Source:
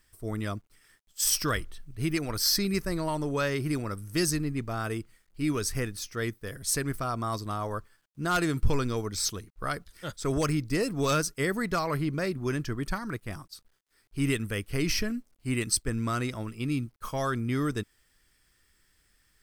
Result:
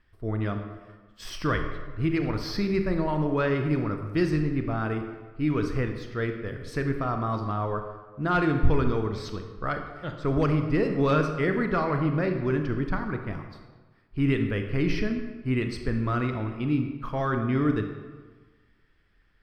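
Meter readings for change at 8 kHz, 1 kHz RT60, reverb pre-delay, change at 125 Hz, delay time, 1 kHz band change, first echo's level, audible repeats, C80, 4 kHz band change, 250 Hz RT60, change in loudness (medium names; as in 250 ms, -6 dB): under -20 dB, 1.4 s, 27 ms, +4.5 dB, no echo, +3.0 dB, no echo, no echo, 8.5 dB, -8.0 dB, 1.4 s, +2.5 dB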